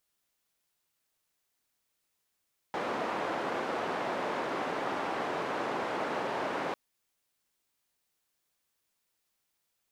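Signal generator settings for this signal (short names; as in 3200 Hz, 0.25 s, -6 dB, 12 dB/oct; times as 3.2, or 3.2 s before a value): noise band 280–980 Hz, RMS -33.5 dBFS 4.00 s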